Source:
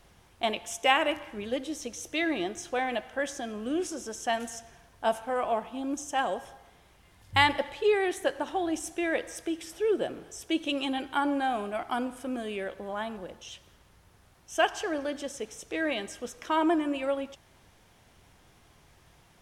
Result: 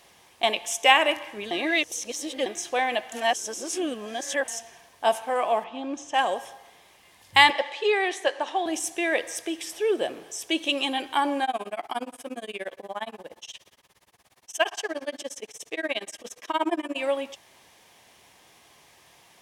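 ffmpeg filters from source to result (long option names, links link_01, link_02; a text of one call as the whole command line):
ffmpeg -i in.wav -filter_complex "[0:a]asettb=1/sr,asplit=3[link_01][link_02][link_03];[link_01]atrim=end=5.644[link_04];[link_02]atrim=start=5.64:end=6.14,asetpts=PTS-STARTPTS,afade=type=in:duration=0.004:curve=qsin,afade=type=out:start_time=0.496:duration=0.004:curve=qsin,lowpass=3700[link_05];[link_03]atrim=start=6.136[link_06];[link_04][link_05]acrossfade=duration=0.004:curve1=hsin:curve2=qsin[link_07];[link_07][link_06]acrossfade=duration=0.004:curve1=qsin:curve2=hsin,asettb=1/sr,asplit=3[link_08][link_09][link_10];[link_08]atrim=end=7.504[link_11];[link_09]atrim=start=7.5:end=8.66,asetpts=PTS-STARTPTS,afade=type=in:duration=0.004:curve=qsin,afade=type=out:start_time=1.156:duration=0.004:curve=qsin,highpass=360,lowpass=6600[link_12];[link_10]atrim=start=8.656[link_13];[link_11][link_12]acrossfade=duration=0.004:curve1=hsin:curve2=qsin[link_14];[link_14][link_13]acrossfade=duration=0.004:curve1=qsin:curve2=hsin,asettb=1/sr,asplit=3[link_15][link_16][link_17];[link_15]atrim=end=11.444[link_18];[link_16]atrim=start=11.44:end=16.96,asetpts=PTS-STARTPTS,afade=type=in:duration=0.004:curve=qsin,afade=type=out:start_time=5.516:duration=0.004:curve=qsin,tremolo=f=17:d=0.99[link_19];[link_17]atrim=start=16.956[link_20];[link_18][link_19]acrossfade=duration=0.004:curve1=hsin:curve2=qsin[link_21];[link_21][link_20]acrossfade=duration=0.004:curve1=qsin:curve2=hsin,asplit=5[link_22][link_23][link_24][link_25][link_26];[link_22]atrim=end=1.512[link_27];[link_23]atrim=start=1.508:end=2.462,asetpts=PTS-STARTPTS,areverse[link_28];[link_24]atrim=start=2.458:end=3.122[link_29];[link_25]atrim=start=3.118:end=4.482,asetpts=PTS-STARTPTS,areverse[link_30];[link_26]atrim=start=4.478[link_31];[link_27][link_28]acrossfade=duration=0.004:curve1=hsin:curve2=hsin[link_32];[link_32][link_29]acrossfade=duration=0.004:curve1=hsin:curve2=hsin[link_33];[link_33][link_30]acrossfade=duration=0.004:curve1=hsin:curve2=hsin[link_34];[link_34][link_31]acrossfade=duration=0.004:curve1=hsin:curve2=hsin,highpass=frequency=710:poles=1,equalizer=frequency=1400:width=6.2:gain=-10.5,volume=8dB" out.wav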